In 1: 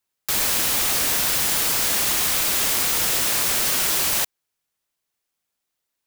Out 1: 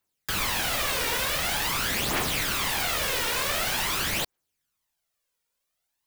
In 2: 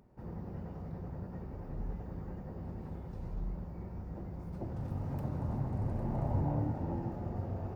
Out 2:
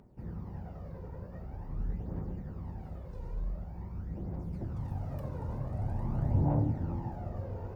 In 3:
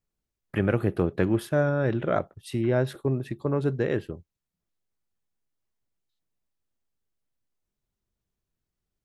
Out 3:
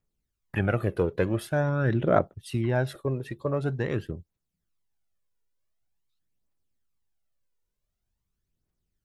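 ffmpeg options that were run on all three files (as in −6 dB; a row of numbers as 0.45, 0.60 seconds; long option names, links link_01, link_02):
-filter_complex "[0:a]acrossover=split=3900[link_01][link_02];[link_02]acompressor=threshold=-30dB:ratio=4:attack=1:release=60[link_03];[link_01][link_03]amix=inputs=2:normalize=0,aphaser=in_gain=1:out_gain=1:delay=2.2:decay=0.53:speed=0.46:type=triangular,volume=-1.5dB"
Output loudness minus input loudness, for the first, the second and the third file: −7.0, +2.0, −1.0 LU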